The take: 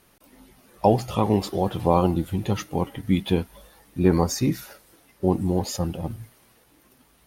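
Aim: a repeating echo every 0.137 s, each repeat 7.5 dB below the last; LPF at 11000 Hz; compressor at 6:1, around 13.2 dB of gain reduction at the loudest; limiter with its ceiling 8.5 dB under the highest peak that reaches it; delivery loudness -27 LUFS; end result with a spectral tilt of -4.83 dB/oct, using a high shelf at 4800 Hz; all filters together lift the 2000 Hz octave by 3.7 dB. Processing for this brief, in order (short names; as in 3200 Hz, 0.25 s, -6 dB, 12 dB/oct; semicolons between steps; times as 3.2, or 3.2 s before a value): LPF 11000 Hz; bell 2000 Hz +3 dB; high shelf 4800 Hz +8 dB; compressor 6:1, threshold -27 dBFS; limiter -21.5 dBFS; feedback echo 0.137 s, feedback 42%, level -7.5 dB; gain +7 dB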